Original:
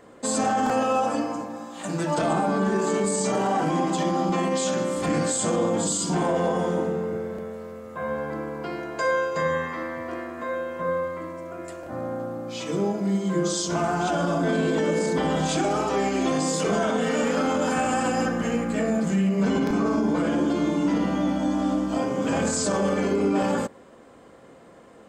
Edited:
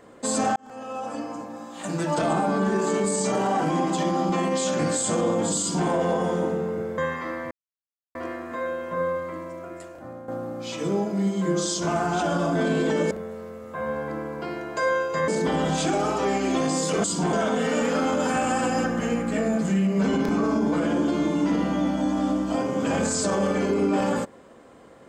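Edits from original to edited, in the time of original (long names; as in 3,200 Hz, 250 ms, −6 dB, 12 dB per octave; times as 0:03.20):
0:00.56–0:01.83: fade in
0:04.79–0:05.14: remove
0:05.95–0:06.24: duplicate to 0:16.75
0:07.33–0:09.50: move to 0:14.99
0:10.03: splice in silence 0.64 s
0:11.39–0:12.16: fade out, to −11.5 dB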